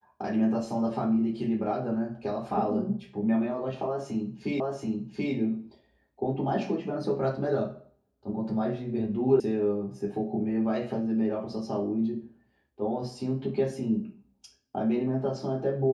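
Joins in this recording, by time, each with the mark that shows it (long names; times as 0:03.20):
0:04.60: the same again, the last 0.73 s
0:09.40: cut off before it has died away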